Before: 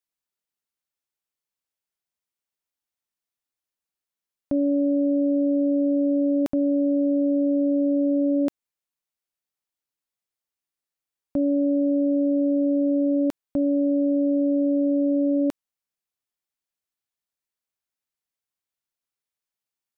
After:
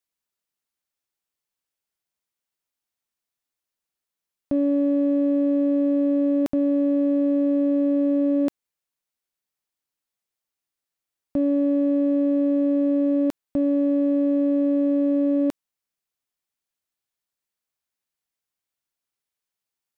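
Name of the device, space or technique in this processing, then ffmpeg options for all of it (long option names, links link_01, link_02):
parallel distortion: -filter_complex "[0:a]asplit=2[link_01][link_02];[link_02]asoftclip=type=hard:threshold=-29dB,volume=-11dB[link_03];[link_01][link_03]amix=inputs=2:normalize=0"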